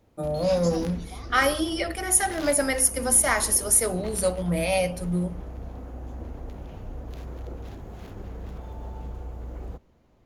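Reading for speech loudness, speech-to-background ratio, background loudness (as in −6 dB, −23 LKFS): −23.0 LKFS, 16.0 dB, −39.0 LKFS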